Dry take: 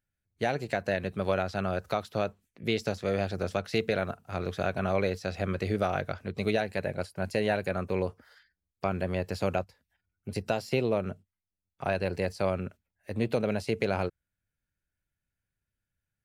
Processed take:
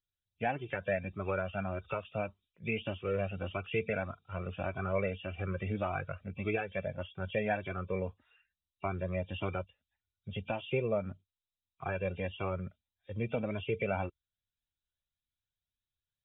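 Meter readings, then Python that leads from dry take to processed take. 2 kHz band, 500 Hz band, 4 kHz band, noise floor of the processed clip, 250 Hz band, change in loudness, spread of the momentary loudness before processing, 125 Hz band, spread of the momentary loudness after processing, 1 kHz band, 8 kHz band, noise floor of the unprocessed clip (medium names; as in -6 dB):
-4.0 dB, -6.0 dB, -8.5 dB, under -85 dBFS, -6.5 dB, -5.5 dB, 7 LU, -3.5 dB, 8 LU, -5.0 dB, under -30 dB, under -85 dBFS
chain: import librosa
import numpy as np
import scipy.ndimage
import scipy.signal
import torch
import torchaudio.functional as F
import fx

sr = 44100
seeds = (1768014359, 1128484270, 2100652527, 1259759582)

y = fx.freq_compress(x, sr, knee_hz=2300.0, ratio=4.0)
y = fx.noise_reduce_blind(y, sr, reduce_db=8)
y = fx.comb_cascade(y, sr, direction='rising', hz=1.7)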